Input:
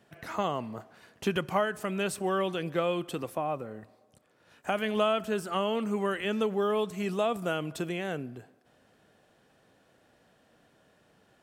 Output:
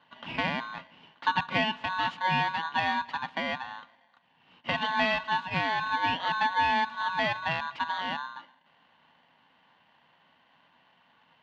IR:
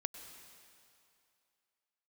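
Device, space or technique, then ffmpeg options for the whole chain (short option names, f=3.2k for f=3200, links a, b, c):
ring modulator pedal into a guitar cabinet: -af "aeval=exprs='val(0)*sgn(sin(2*PI*1300*n/s))':c=same,highpass=89,equalizer=f=170:t=q:w=4:g=9,equalizer=f=250:t=q:w=4:g=10,equalizer=f=400:t=q:w=4:g=-6,equalizer=f=920:t=q:w=4:g=9,equalizer=f=2.9k:t=q:w=4:g=8,lowpass=f=3.7k:w=0.5412,lowpass=f=3.7k:w=1.3066,volume=-2dB"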